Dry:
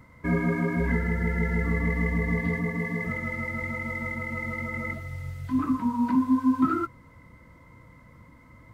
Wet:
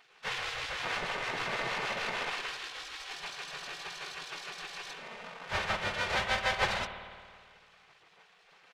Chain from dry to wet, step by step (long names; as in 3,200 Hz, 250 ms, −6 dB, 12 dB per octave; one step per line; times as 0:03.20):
each half-wave held at its own peak
low-pass filter 3,400 Hz 12 dB per octave
mains-hum notches 60/120/180 Hz
comb filter 3.3 ms, depth 75%
pitch-shifted copies added +4 semitones −8 dB
gate on every frequency bin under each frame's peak −20 dB weak
on a send: convolution reverb RT60 1.9 s, pre-delay 54 ms, DRR 8.5 dB
on the sum: level −3.5 dB